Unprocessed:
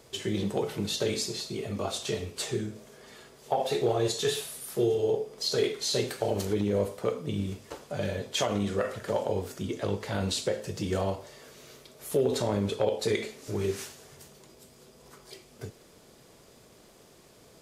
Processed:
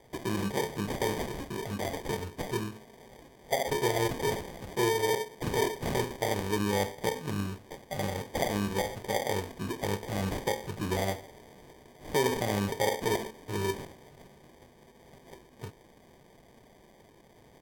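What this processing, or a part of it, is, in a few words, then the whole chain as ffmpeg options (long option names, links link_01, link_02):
crushed at another speed: -af "asetrate=55125,aresample=44100,acrusher=samples=26:mix=1:aa=0.000001,asetrate=35280,aresample=44100,volume=-1.5dB"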